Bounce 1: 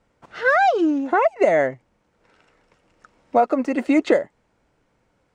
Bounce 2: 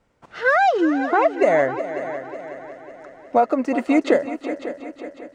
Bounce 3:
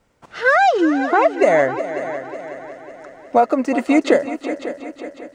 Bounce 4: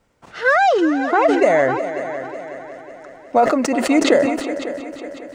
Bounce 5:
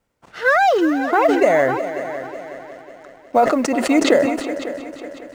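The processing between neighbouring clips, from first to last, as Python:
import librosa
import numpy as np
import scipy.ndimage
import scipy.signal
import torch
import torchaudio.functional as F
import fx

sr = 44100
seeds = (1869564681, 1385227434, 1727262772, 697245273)

y1 = fx.echo_heads(x, sr, ms=183, heads='second and third', feedback_pct=51, wet_db=-13.0)
y2 = fx.high_shelf(y1, sr, hz=4600.0, db=6.5)
y2 = y2 * 10.0 ** (2.5 / 20.0)
y3 = fx.sustainer(y2, sr, db_per_s=45.0)
y3 = y3 * 10.0 ** (-1.0 / 20.0)
y4 = fx.law_mismatch(y3, sr, coded='A')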